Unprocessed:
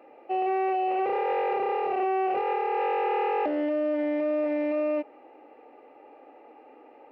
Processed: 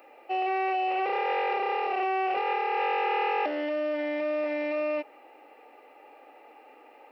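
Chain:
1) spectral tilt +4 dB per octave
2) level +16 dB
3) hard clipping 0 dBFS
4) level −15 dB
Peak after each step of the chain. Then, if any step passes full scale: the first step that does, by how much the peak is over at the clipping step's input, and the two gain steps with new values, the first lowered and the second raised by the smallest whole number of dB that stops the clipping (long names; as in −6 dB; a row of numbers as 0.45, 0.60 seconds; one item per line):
−18.0, −2.0, −2.0, −17.0 dBFS
no step passes full scale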